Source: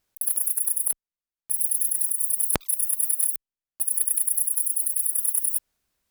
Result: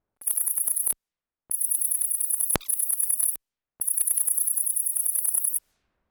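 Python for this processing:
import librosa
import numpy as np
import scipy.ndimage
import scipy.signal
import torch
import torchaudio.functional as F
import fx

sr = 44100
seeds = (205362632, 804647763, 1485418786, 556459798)

y = fx.transient(x, sr, attack_db=0, sustain_db=7)
y = fx.env_lowpass(y, sr, base_hz=980.0, full_db=-25.5)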